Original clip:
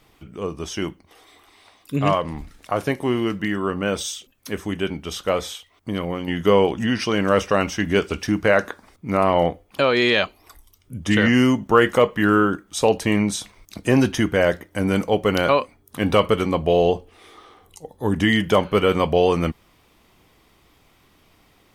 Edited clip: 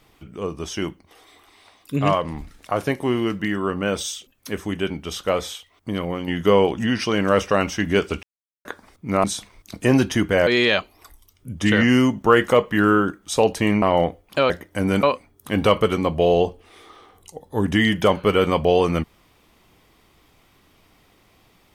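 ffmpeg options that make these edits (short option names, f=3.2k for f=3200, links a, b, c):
-filter_complex "[0:a]asplit=8[a][b][c][d][e][f][g][h];[a]atrim=end=8.23,asetpts=PTS-STARTPTS,afade=t=out:st=8.226:d=0.004:c=hsin[i];[b]atrim=start=8.23:end=8.65,asetpts=PTS-STARTPTS,volume=0[j];[c]atrim=start=8.65:end=9.242,asetpts=PTS-STARTPTS,afade=t=in:d=0.004:c=hsin[k];[d]atrim=start=13.268:end=14.502[l];[e]atrim=start=9.918:end=13.272[m];[f]atrim=start=9.238:end=9.922[n];[g]atrim=start=14.498:end=15.032[o];[h]atrim=start=15.508[p];[i][j][k]concat=n=3:v=0:a=1[q];[q][l]acrossfade=d=0.004:c1=hsin:c2=hsin[r];[r][m]acrossfade=d=0.004:c1=hsin:c2=hsin[s];[s][n]acrossfade=d=0.004:c1=hsin:c2=hsin[t];[t][o]acrossfade=d=0.004:c1=hsin:c2=hsin[u];[u][p]acrossfade=d=0.004:c1=hsin:c2=hsin"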